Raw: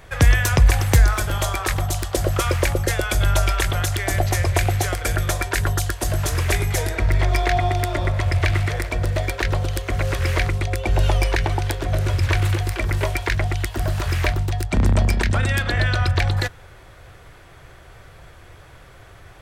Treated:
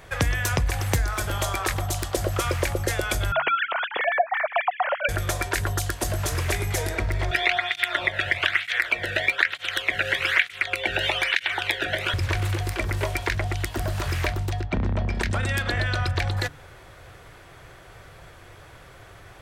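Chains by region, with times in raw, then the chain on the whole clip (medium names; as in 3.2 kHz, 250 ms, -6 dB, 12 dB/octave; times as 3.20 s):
3.32–5.09 s: formants replaced by sine waves + distance through air 220 m
7.31–12.14 s: high-order bell 2.3 kHz +14.5 dB + cancelling through-zero flanger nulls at 1.1 Hz, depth 1 ms
14.60–15.15 s: distance through air 190 m + band-stop 4.7 kHz, Q 21
whole clip: compression 2:1, threshold -22 dBFS; bass shelf 71 Hz -6.5 dB; de-hum 72.51 Hz, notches 4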